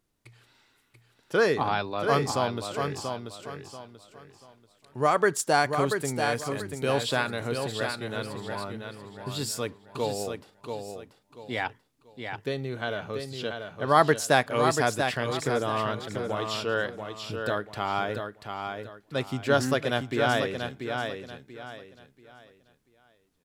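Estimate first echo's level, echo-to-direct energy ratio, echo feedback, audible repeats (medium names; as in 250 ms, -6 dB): -6.0 dB, -5.5 dB, 30%, 3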